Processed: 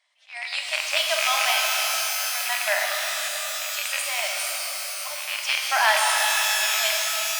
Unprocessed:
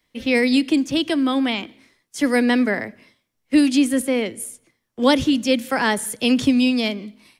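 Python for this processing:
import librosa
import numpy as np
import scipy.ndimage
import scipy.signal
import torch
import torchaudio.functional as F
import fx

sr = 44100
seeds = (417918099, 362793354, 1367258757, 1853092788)

p1 = fx.rattle_buzz(x, sr, strikes_db=-26.0, level_db=-10.0)
p2 = fx.auto_swell(p1, sr, attack_ms=523.0)
p3 = fx.brickwall_bandpass(p2, sr, low_hz=570.0, high_hz=9800.0)
p4 = p3 + fx.echo_tape(p3, sr, ms=235, feedback_pct=75, wet_db=-16.0, lp_hz=1200.0, drive_db=3.0, wow_cents=26, dry=0)
y = fx.rev_shimmer(p4, sr, seeds[0], rt60_s=3.9, semitones=12, shimmer_db=-2, drr_db=-0.5)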